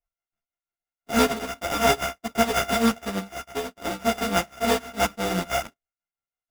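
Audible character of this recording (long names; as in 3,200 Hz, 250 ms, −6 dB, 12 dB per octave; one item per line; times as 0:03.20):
a buzz of ramps at a fixed pitch in blocks of 64 samples
tremolo triangle 6 Hz, depth 75%
aliases and images of a low sample rate 4,200 Hz, jitter 0%
a shimmering, thickened sound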